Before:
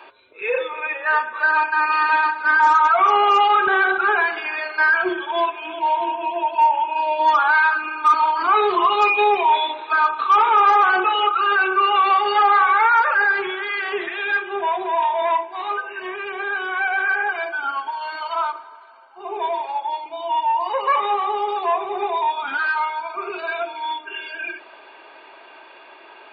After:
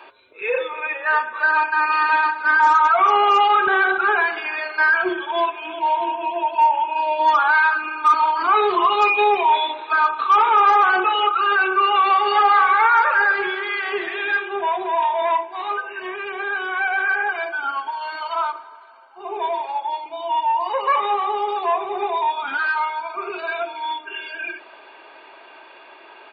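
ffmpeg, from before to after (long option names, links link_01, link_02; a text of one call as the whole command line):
ffmpeg -i in.wav -filter_complex "[0:a]asplit=3[link_01][link_02][link_03];[link_01]afade=type=out:start_time=12.2:duration=0.02[link_04];[link_02]aecho=1:1:204:0.316,afade=type=in:start_time=12.2:duration=0.02,afade=type=out:start_time=14.47:duration=0.02[link_05];[link_03]afade=type=in:start_time=14.47:duration=0.02[link_06];[link_04][link_05][link_06]amix=inputs=3:normalize=0" out.wav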